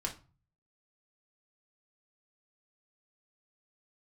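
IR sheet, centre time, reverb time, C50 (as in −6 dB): 14 ms, 0.35 s, 12.5 dB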